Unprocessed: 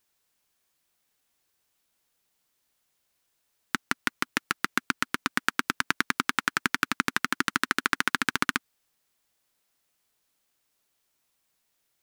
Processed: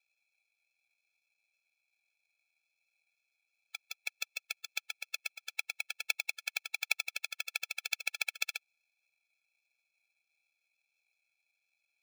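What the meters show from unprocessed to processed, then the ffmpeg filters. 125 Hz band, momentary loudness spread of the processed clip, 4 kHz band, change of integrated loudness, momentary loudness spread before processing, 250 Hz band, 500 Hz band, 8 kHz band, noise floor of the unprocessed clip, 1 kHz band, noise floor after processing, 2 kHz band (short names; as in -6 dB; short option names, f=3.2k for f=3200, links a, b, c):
under -40 dB, 8 LU, -6.5 dB, -9.0 dB, 5 LU, under -40 dB, -17.0 dB, -6.5 dB, -76 dBFS, -23.5 dB, -85 dBFS, -10.5 dB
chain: -af "acrusher=samples=28:mix=1:aa=0.000001,highpass=f=2.5k:t=q:w=3.2,afftfilt=real='re*eq(mod(floor(b*sr/1024/440),2),1)':imag='im*eq(mod(floor(b*sr/1024/440),2),1)':win_size=1024:overlap=0.75"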